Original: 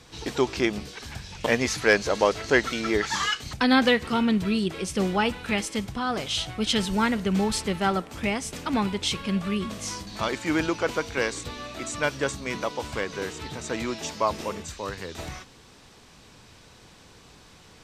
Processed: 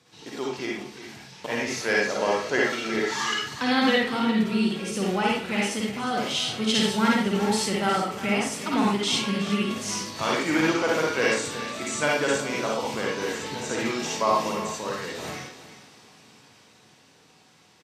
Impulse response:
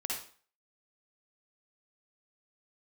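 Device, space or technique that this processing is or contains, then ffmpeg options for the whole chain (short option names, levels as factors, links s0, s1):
far laptop microphone: -filter_complex "[1:a]atrim=start_sample=2205[s0];[0:a][s0]afir=irnorm=-1:irlink=0,highpass=f=110:w=0.5412,highpass=f=110:w=1.3066,dynaudnorm=f=120:g=31:m=3.76,asettb=1/sr,asplit=3[s1][s2][s3];[s1]atrim=end=12.404[s4];[s2]atrim=start=12.4:end=13.18,asetpts=PTS-STARTPTS,afade=t=in:d=0.004:c=qsin,afade=t=out:st=0.776:d=0.004:c=qsin,equalizer=f=1900:w=2.2:g=-5[s5];[s3]atrim=start=13.176[s6];[s4][s5]acrossfade=d=0.004:c1=hsin:c2=qsin[s7];[s7][s6]acrossfade=d=0.004:c1=qsin:c2=hsin,aecho=1:1:360:0.211,volume=0.422"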